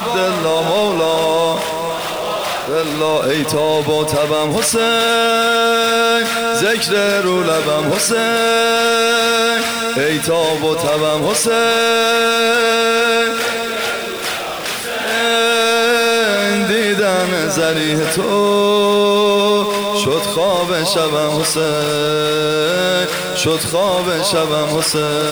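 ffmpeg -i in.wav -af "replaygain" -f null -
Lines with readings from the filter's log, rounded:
track_gain = -3.4 dB
track_peak = 0.383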